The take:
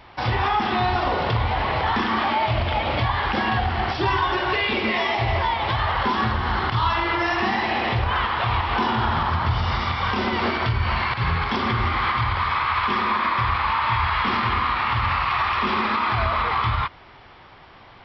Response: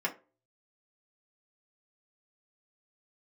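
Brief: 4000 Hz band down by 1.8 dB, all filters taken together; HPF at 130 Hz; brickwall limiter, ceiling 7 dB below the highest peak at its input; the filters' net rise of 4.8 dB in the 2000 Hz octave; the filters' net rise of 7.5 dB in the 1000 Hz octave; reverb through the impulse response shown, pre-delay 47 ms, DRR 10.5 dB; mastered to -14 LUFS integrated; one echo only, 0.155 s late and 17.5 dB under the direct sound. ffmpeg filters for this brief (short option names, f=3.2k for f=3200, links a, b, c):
-filter_complex "[0:a]highpass=130,equalizer=f=1k:t=o:g=8,equalizer=f=2k:t=o:g=4.5,equalizer=f=4k:t=o:g=-5.5,alimiter=limit=-11dB:level=0:latency=1,aecho=1:1:155:0.133,asplit=2[a][b];[1:a]atrim=start_sample=2205,adelay=47[c];[b][c]afir=irnorm=-1:irlink=0,volume=-17dB[d];[a][d]amix=inputs=2:normalize=0,volume=5dB"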